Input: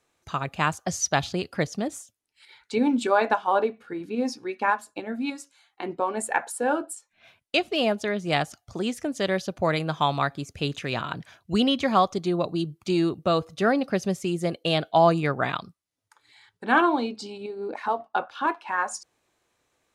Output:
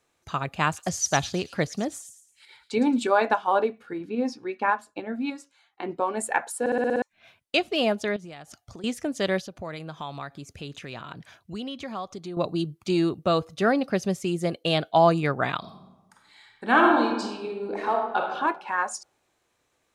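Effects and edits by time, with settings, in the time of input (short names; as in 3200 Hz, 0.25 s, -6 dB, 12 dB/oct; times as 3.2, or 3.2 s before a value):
0.65–2.99 thin delay 0.11 s, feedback 35%, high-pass 5100 Hz, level -6 dB
3.98–5.89 LPF 3500 Hz 6 dB/oct
6.6 stutter in place 0.06 s, 7 plays
8.16–8.84 compressor 10:1, threshold -38 dBFS
9.4–12.37 compressor 2:1, threshold -41 dBFS
15.59–18.29 reverb throw, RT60 1.1 s, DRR 1 dB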